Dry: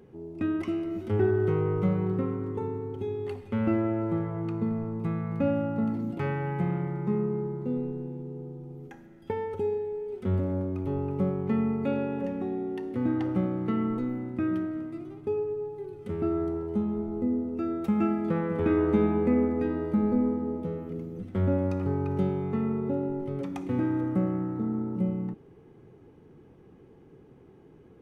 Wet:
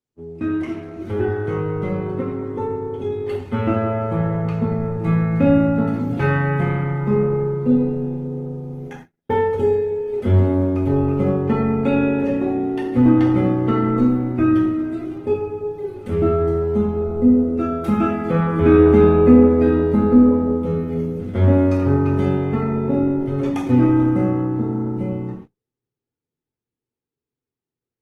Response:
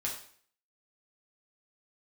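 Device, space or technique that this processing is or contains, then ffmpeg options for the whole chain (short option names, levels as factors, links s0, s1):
speakerphone in a meeting room: -filter_complex "[1:a]atrim=start_sample=2205[s0];[0:a][s0]afir=irnorm=-1:irlink=0,dynaudnorm=f=220:g=31:m=2,agate=range=0.00794:threshold=0.01:ratio=16:detection=peak,volume=1.5" -ar 48000 -c:a libopus -b:a 16k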